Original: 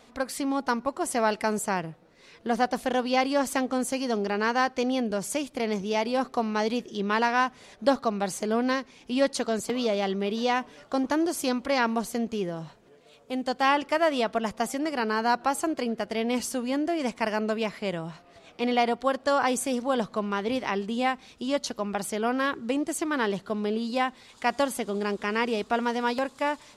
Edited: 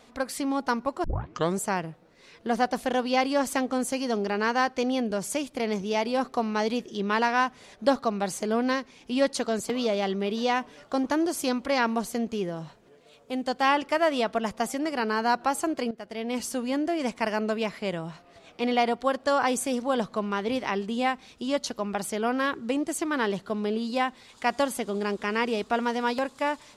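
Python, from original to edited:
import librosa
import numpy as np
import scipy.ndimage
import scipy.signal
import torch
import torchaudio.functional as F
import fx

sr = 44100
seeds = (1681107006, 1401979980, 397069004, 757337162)

y = fx.edit(x, sr, fx.tape_start(start_s=1.04, length_s=0.55),
    fx.fade_in_from(start_s=15.91, length_s=0.67, floor_db=-13.5), tone=tone)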